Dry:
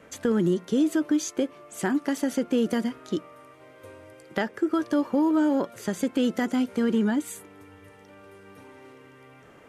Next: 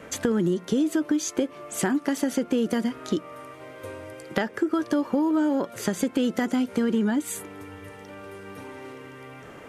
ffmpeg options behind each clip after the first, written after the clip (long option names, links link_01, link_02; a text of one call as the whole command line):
ffmpeg -i in.wav -af "acompressor=threshold=-31dB:ratio=3,volume=8dB" out.wav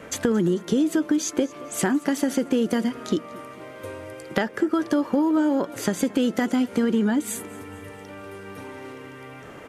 ffmpeg -i in.wav -af "aecho=1:1:225|450|675|900:0.0891|0.0455|0.0232|0.0118,volume=2dB" out.wav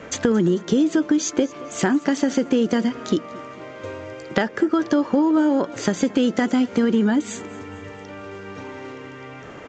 ffmpeg -i in.wav -af "aresample=16000,aresample=44100,volume=3dB" out.wav